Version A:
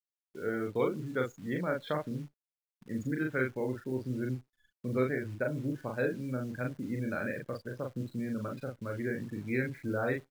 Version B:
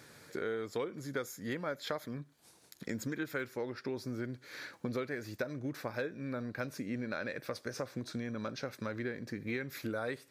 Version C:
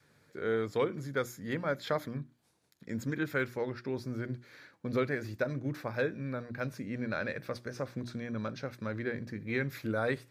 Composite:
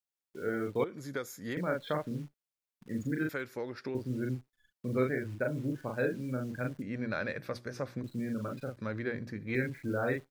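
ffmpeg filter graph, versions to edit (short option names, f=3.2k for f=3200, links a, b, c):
-filter_complex "[1:a]asplit=2[a][b];[2:a]asplit=2[c][d];[0:a]asplit=5[e][f][g][h][i];[e]atrim=end=0.842[j];[a]atrim=start=0.838:end=1.572[k];[f]atrim=start=1.568:end=3.292[l];[b]atrim=start=3.288:end=3.952[m];[g]atrim=start=3.948:end=6.822[n];[c]atrim=start=6.818:end=8.042[o];[h]atrim=start=8.038:end=8.772[p];[d]atrim=start=8.768:end=9.552[q];[i]atrim=start=9.548[r];[j][k]acrossfade=d=0.004:c1=hsin:c2=hsin[s];[s][l]acrossfade=d=0.004:c1=hsin:c2=hsin[t];[t][m]acrossfade=d=0.004:c1=hsin:c2=hsin[u];[u][n]acrossfade=d=0.004:c1=hsin:c2=hsin[v];[v][o]acrossfade=d=0.004:c1=hsin:c2=hsin[w];[w][p]acrossfade=d=0.004:c1=hsin:c2=hsin[x];[x][q]acrossfade=d=0.004:c1=hsin:c2=hsin[y];[y][r]acrossfade=d=0.004:c1=hsin:c2=hsin"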